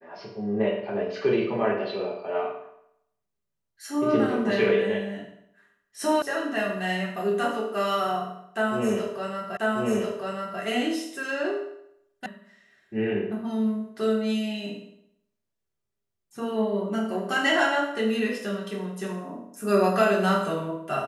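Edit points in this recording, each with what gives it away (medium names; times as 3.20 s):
6.22 s: sound stops dead
9.57 s: repeat of the last 1.04 s
12.26 s: sound stops dead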